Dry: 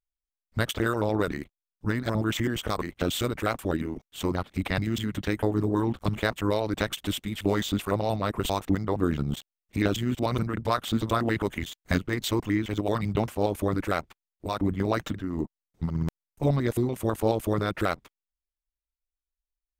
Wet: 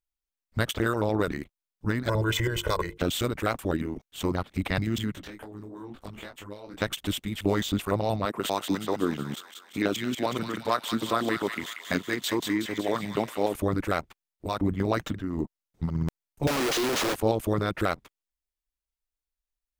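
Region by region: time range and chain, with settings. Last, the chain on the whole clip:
0:02.08–0:02.98: mains-hum notches 50/100/150/200/250/300/350/400/450 Hz + comb filter 2 ms, depth 90%
0:05.12–0:06.82: parametric band 96 Hz −6.5 dB 1.5 octaves + downward compressor 5 to 1, threshold −34 dBFS + micro pitch shift up and down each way 37 cents
0:08.25–0:13.55: high-pass filter 210 Hz + delay with a high-pass on its return 185 ms, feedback 57%, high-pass 1,600 Hz, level −4 dB
0:16.47–0:17.15: linear delta modulator 32 kbit/s, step −24 dBFS + high-pass filter 280 Hz 24 dB per octave + log-companded quantiser 2 bits
whole clip: no processing

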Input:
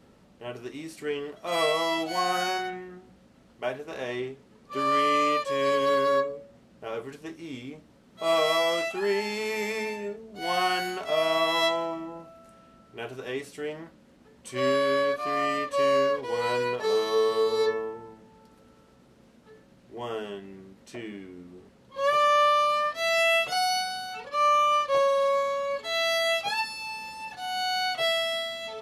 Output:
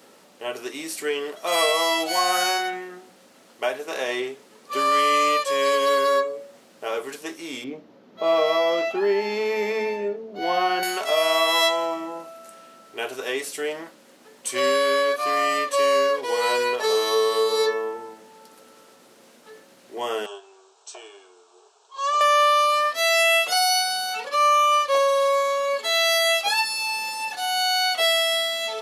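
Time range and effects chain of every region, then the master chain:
0:07.64–0:10.83: moving average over 5 samples + tilt shelving filter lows +6.5 dB, about 730 Hz
0:20.26–0:22.21: Chebyshev band-pass filter 420–8,000 Hz, order 5 + parametric band 4,700 Hz −5 dB 0.24 octaves + phaser with its sweep stopped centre 530 Hz, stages 6
whole clip: high-pass filter 390 Hz 12 dB per octave; high-shelf EQ 5,500 Hz +10.5 dB; downward compressor 1.5 to 1, threshold −33 dBFS; level +8.5 dB

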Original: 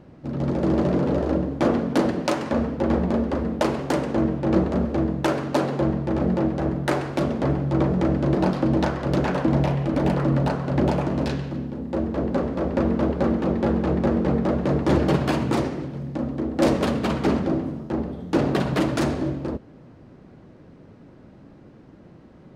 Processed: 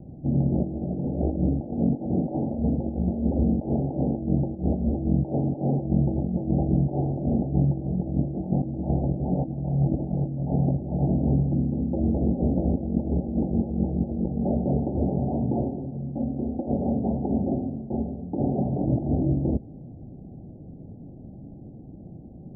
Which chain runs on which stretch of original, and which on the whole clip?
0:14.41–0:18.84: spectral tilt +2 dB per octave + notch comb filter 160 Hz
whole clip: compressor whose output falls as the input rises −25 dBFS, ratio −0.5; Butterworth low-pass 800 Hz 96 dB per octave; parametric band 510 Hz −10.5 dB 1.6 octaves; level +5.5 dB

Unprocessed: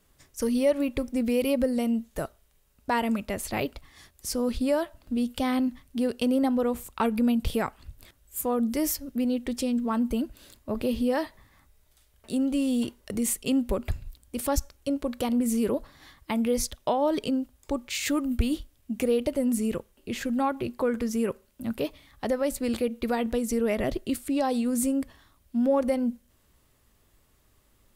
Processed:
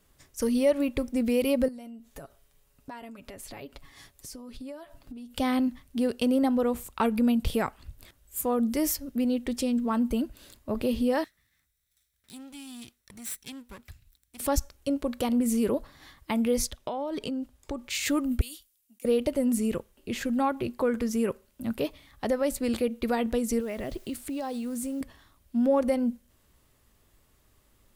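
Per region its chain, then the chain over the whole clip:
0:01.68–0:05.34: downward compressor 8 to 1, threshold −40 dBFS + comb filter 7.2 ms, depth 48%
0:11.24–0:14.40: lower of the sound and its delayed copy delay 0.53 ms + high-pass filter 69 Hz 6 dB per octave + guitar amp tone stack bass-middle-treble 5-5-5
0:16.68–0:17.84: high-shelf EQ 12,000 Hz −7.5 dB + downward compressor 10 to 1, threshold −28 dBFS
0:18.41–0:19.05: first-order pre-emphasis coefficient 0.97 + compressor whose output falls as the input rises −43 dBFS, ratio −0.5 + multiband upward and downward expander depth 40%
0:23.60–0:25.01: downward compressor 2.5 to 1, threshold −33 dBFS + bit-depth reduction 10 bits, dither triangular
whole clip: no processing

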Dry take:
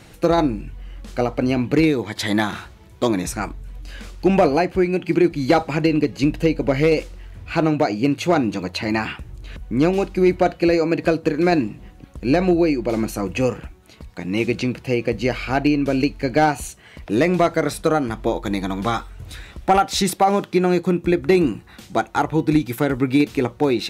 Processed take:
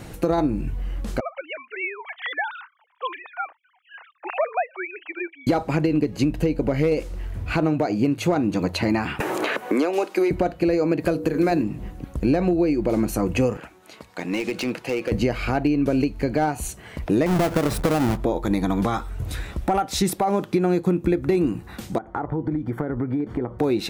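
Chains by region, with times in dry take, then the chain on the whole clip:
0:01.20–0:05.47: three sine waves on the formant tracks + high-pass filter 820 Hz 24 dB per octave
0:09.20–0:10.31: Bessel high-pass filter 540 Hz, order 4 + multiband upward and downward compressor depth 100%
0:11.00–0:11.63: high-shelf EQ 10,000 Hz +11 dB + mains-hum notches 60/120/180/240/300/360/420/480/540 Hz
0:13.57–0:15.12: meter weighting curve A + downward compressor, threshold −24 dBFS + hard clipping −24 dBFS
0:17.26–0:18.17: each half-wave held at its own peak + high-shelf EQ 7,200 Hz −7 dB + downward compressor 3 to 1, threshold −18 dBFS
0:21.98–0:23.59: Savitzky-Golay smoothing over 41 samples + downward compressor 12 to 1, threshold −28 dBFS
whole clip: downward compressor, threshold −24 dBFS; parametric band 3,600 Hz −7 dB 2.7 octaves; boost into a limiter +16.5 dB; level −9 dB

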